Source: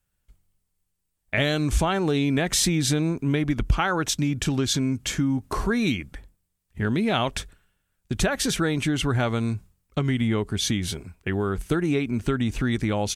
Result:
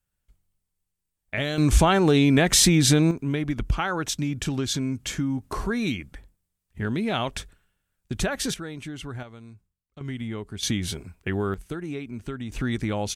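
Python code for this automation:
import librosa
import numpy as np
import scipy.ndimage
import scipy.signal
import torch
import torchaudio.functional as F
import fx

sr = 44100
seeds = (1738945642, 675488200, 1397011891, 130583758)

y = fx.gain(x, sr, db=fx.steps((0.0, -4.5), (1.58, 4.5), (3.11, -3.0), (8.54, -12.0), (9.23, -19.5), (10.01, -9.0), (10.63, -1.0), (11.54, -9.5), (12.52, -2.5)))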